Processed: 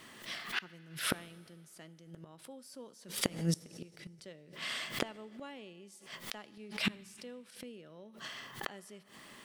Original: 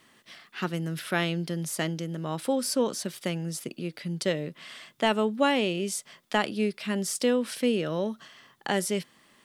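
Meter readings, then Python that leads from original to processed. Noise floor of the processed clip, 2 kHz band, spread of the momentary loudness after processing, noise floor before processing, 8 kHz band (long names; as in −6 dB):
−59 dBFS, −8.0 dB, 18 LU, −63 dBFS, −10.0 dB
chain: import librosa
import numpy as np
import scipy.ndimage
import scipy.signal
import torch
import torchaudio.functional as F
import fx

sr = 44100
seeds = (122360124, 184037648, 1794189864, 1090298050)

y = fx.gate_flip(x, sr, shuts_db=-26.0, range_db=-30)
y = fx.rev_fdn(y, sr, rt60_s=2.0, lf_ratio=0.75, hf_ratio=0.9, size_ms=47.0, drr_db=18.0)
y = fx.pre_swell(y, sr, db_per_s=120.0)
y = F.gain(torch.from_numpy(y), 6.0).numpy()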